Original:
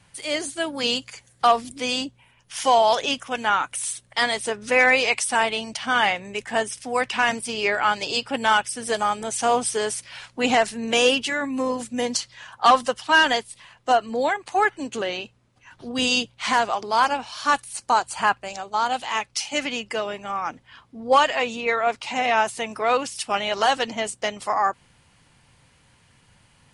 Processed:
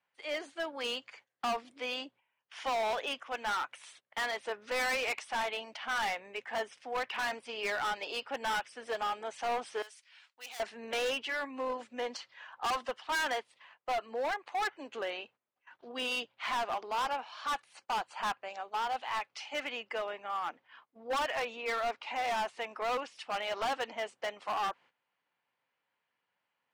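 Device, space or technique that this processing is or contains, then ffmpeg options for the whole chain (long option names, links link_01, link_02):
walkie-talkie: -filter_complex "[0:a]highpass=490,lowpass=2600,asoftclip=type=hard:threshold=-23dB,agate=range=-14dB:threshold=-51dB:ratio=16:detection=peak,asettb=1/sr,asplit=3[link_01][link_02][link_03];[link_01]atrim=end=9.824[link_04];[link_02]atrim=start=9.82:end=10.6,asetpts=PTS-STARTPTS,afade=type=in:duration=0.004:curve=qsin,afade=type=out:start_time=0.776:duration=0.004:curve=qsin,aderivative[link_05];[link_03]atrim=start=10.596[link_06];[link_04][link_05]acrossfade=duration=0.004:curve1=hsin:curve2=qsin[link_07];[link_07][link_06]acrossfade=duration=0.004:curve1=qsin:curve2=hsin,volume=-6.5dB"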